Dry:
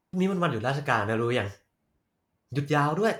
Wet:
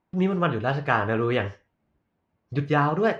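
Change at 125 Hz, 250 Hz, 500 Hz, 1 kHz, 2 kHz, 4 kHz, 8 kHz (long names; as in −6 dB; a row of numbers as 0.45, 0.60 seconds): +2.5 dB, +2.5 dB, +2.5 dB, +2.5 dB, +2.0 dB, −0.5 dB, below −10 dB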